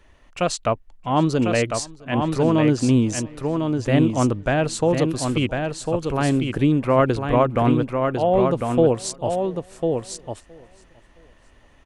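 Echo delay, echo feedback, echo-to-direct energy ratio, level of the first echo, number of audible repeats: 667 ms, no regular repeats, -5.0 dB, -24.0 dB, 4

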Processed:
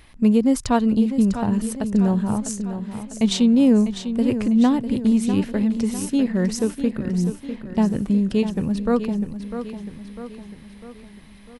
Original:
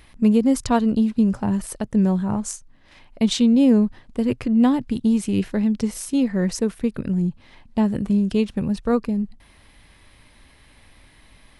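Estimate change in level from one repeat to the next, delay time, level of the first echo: -5.5 dB, 650 ms, -10.0 dB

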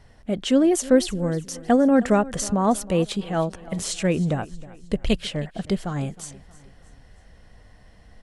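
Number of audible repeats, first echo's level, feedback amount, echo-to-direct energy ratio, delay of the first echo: 3, -19.5 dB, 45%, -18.5 dB, 315 ms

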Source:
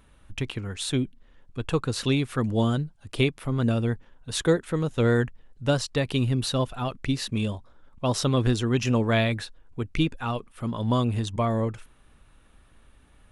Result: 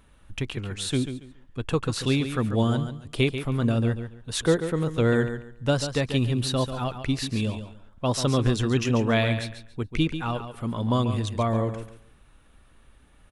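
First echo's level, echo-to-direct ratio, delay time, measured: -9.5 dB, -9.5 dB, 140 ms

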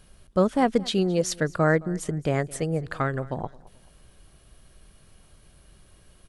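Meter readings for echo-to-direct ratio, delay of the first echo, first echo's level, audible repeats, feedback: -21.5 dB, 217 ms, -22.0 dB, 2, 34%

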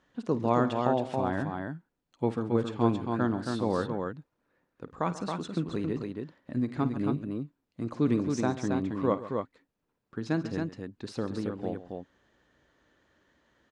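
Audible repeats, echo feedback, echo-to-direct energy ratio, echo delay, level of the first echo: 3, no regular repeats, -4.0 dB, 52 ms, -15.5 dB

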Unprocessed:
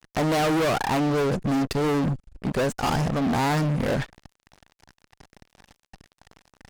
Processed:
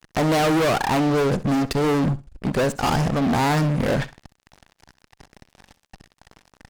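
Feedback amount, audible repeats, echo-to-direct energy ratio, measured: 17%, 2, -17.0 dB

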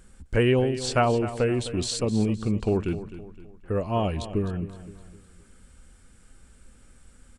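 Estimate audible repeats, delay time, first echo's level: 3, 258 ms, -13.5 dB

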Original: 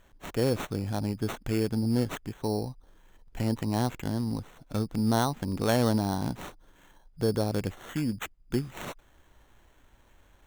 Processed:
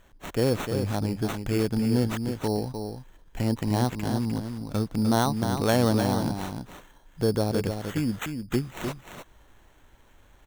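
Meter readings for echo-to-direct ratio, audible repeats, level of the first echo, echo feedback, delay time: -7.0 dB, 1, -7.0 dB, no regular repeats, 303 ms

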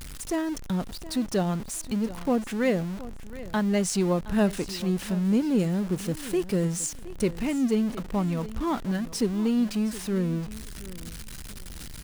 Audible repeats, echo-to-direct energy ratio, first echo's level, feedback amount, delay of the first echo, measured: 2, -16.5 dB, -16.5 dB, 20%, 719 ms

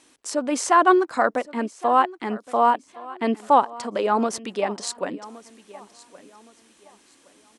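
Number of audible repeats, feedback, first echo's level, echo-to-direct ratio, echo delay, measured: 2, 31%, -19.5 dB, -19.0 dB, 1117 ms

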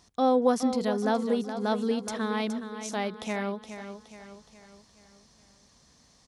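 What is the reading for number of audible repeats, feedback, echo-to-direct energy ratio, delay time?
4, 47%, -9.0 dB, 419 ms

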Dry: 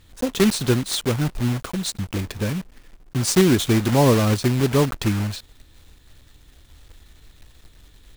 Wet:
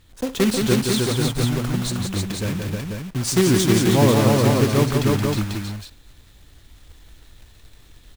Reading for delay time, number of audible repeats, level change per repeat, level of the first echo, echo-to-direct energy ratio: 61 ms, 4, no regular repeats, -15.0 dB, 1.0 dB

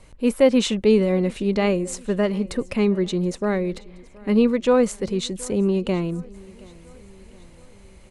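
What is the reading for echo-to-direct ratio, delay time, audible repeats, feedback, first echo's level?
-22.0 dB, 724 ms, 3, 54%, -23.5 dB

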